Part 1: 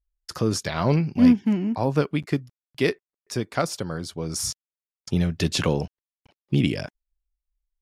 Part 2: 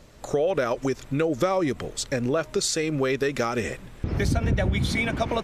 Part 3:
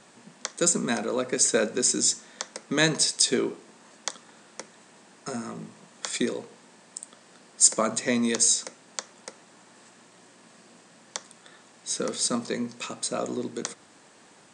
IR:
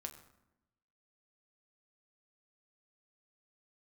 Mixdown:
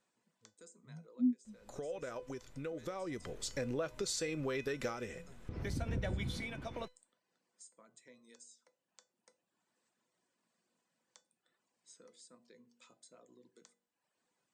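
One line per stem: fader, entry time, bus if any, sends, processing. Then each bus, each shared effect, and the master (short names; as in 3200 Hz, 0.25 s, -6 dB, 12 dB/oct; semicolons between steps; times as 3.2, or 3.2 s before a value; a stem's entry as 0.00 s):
+3.0 dB, 0.00 s, no send, spectral expander 4:1
+2.5 dB, 1.45 s, no send, auto duck -9 dB, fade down 0.30 s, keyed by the first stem
-17.5 dB, 0.00 s, no send, reverb removal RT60 0.91 s; compressor 6:1, threshold -30 dBFS, peak gain reduction 16 dB; de-hum 47.69 Hz, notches 18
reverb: off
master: resonator 500 Hz, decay 0.24 s, harmonics all, mix 70%; compressor 1.5:1, threshold -45 dBFS, peak gain reduction 10 dB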